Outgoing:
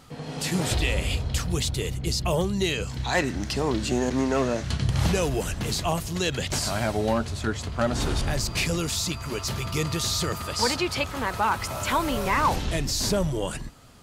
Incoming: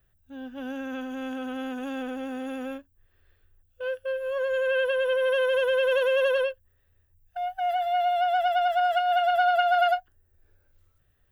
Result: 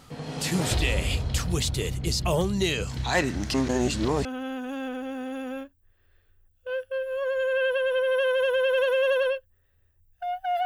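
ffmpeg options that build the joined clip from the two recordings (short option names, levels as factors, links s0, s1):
-filter_complex "[0:a]apad=whole_dur=10.65,atrim=end=10.65,asplit=2[s0][s1];[s0]atrim=end=3.542[s2];[s1]atrim=start=3.538:end=4.252,asetpts=PTS-STARTPTS,areverse[s3];[1:a]atrim=start=1.388:end=7.79[s4];[s2][s3]acrossfade=d=0.004:c1=hsin:c2=hsin[s5];[s5][s4]acrossfade=d=0.004:c1=hsin:c2=hsin"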